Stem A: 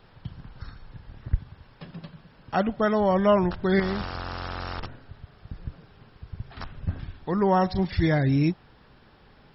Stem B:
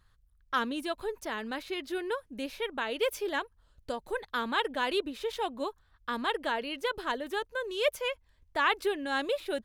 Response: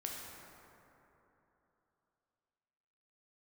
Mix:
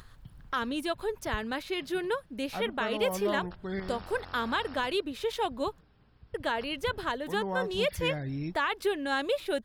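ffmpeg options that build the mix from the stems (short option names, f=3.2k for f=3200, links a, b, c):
-filter_complex "[0:a]aeval=exprs='val(0)+0.00251*(sin(2*PI*60*n/s)+sin(2*PI*2*60*n/s)/2+sin(2*PI*3*60*n/s)/3+sin(2*PI*4*60*n/s)/4+sin(2*PI*5*60*n/s)/5)':c=same,volume=-13dB[a];[1:a]alimiter=limit=-21.5dB:level=0:latency=1:release=202,acompressor=mode=upward:threshold=-44dB:ratio=2.5,volume=2.5dB,asplit=3[b][c][d];[b]atrim=end=5.81,asetpts=PTS-STARTPTS,afade=t=out:st=5.806:d=0.004:c=hsin[e];[c]atrim=start=5.81:end=6.34,asetpts=PTS-STARTPTS,volume=0[f];[d]atrim=start=6.34,asetpts=PTS-STARTPTS,afade=t=in:d=0.004:c=hsin[g];[e][f][g]concat=n=3:v=0:a=1[h];[a][h]amix=inputs=2:normalize=0"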